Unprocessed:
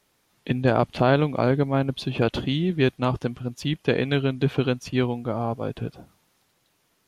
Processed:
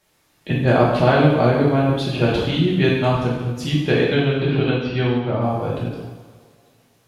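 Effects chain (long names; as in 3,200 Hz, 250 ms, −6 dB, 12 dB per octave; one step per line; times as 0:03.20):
0:04.04–0:05.42: Butterworth low-pass 4,300 Hz 36 dB per octave
coupled-rooms reverb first 0.95 s, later 2.7 s, from −18 dB, DRR −6 dB
every ending faded ahead of time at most 160 dB per second
level −1 dB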